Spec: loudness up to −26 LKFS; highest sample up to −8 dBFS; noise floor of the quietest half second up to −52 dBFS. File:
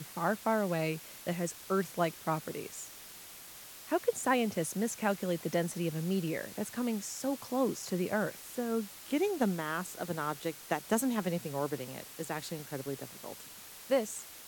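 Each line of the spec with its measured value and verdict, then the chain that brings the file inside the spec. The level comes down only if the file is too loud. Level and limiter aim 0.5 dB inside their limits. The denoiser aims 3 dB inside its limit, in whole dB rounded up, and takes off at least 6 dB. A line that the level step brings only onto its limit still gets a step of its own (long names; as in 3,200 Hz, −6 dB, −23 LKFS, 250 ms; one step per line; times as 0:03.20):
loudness −34.0 LKFS: in spec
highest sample −14.5 dBFS: in spec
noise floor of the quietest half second −50 dBFS: out of spec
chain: broadband denoise 6 dB, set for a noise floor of −50 dBFS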